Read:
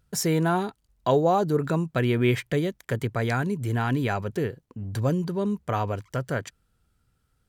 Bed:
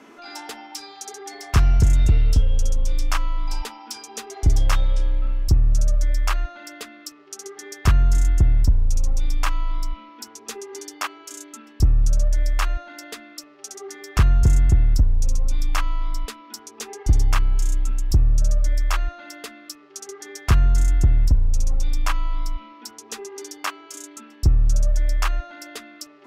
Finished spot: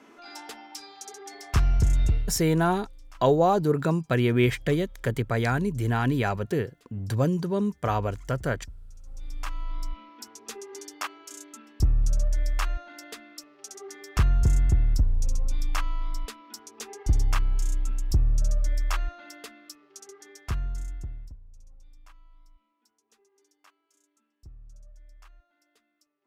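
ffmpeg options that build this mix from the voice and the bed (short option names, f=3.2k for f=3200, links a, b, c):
-filter_complex "[0:a]adelay=2150,volume=0.5dB[a];[1:a]volume=16dB,afade=t=out:st=2.07:d=0.31:silence=0.0841395,afade=t=in:st=9.03:d=0.97:silence=0.0794328,afade=t=out:st=19.11:d=2.27:silence=0.0501187[b];[a][b]amix=inputs=2:normalize=0"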